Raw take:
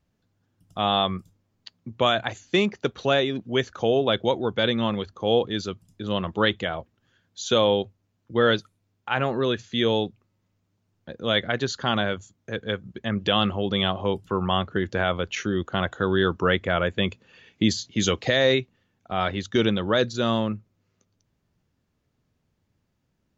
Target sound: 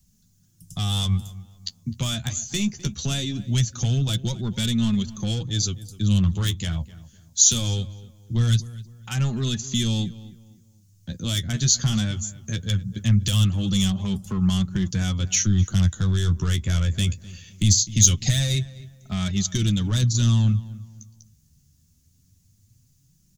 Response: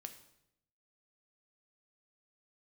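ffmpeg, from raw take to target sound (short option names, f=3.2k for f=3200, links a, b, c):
-filter_complex "[0:a]aeval=exprs='0.422*(cos(1*acos(clip(val(0)/0.422,-1,1)))-cos(1*PI/2))+0.0119*(cos(7*acos(clip(val(0)/0.422,-1,1)))-cos(7*PI/2))':c=same,flanger=delay=4.7:depth=8.9:regen=22:speed=0.21:shape=sinusoidal,acrossover=split=160[a][b];[b]acompressor=threshold=-35dB:ratio=2.5[c];[a][c]amix=inputs=2:normalize=0,asplit=2[d][e];[e]asoftclip=type=tanh:threshold=-29dB,volume=-10dB[f];[d][f]amix=inputs=2:normalize=0,apsyclip=26dB,firequalizer=gain_entry='entry(120,0);entry(440,-24);entry(6300,9)':delay=0.05:min_phase=1,asplit=2[g][h];[h]adelay=255,lowpass=f=2.1k:p=1,volume=-17dB,asplit=2[i][j];[j]adelay=255,lowpass=f=2.1k:p=1,volume=0.34,asplit=2[k][l];[l]adelay=255,lowpass=f=2.1k:p=1,volume=0.34[m];[i][k][m]amix=inputs=3:normalize=0[n];[g][n]amix=inputs=2:normalize=0,volume=-9dB"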